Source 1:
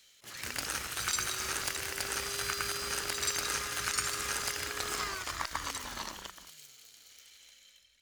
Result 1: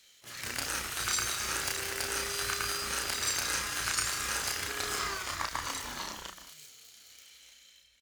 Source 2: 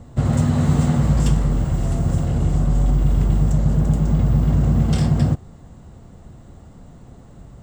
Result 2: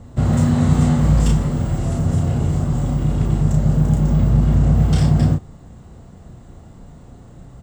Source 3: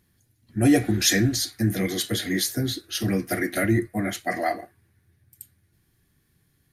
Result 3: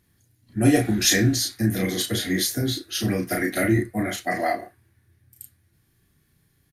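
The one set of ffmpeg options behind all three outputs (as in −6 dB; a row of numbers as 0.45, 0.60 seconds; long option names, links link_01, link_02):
-filter_complex "[0:a]asplit=2[link_01][link_02];[link_02]adelay=33,volume=-3.5dB[link_03];[link_01][link_03]amix=inputs=2:normalize=0" -ar 48000 -c:a libopus -b:a 96k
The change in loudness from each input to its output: +1.5, +1.5, +1.0 LU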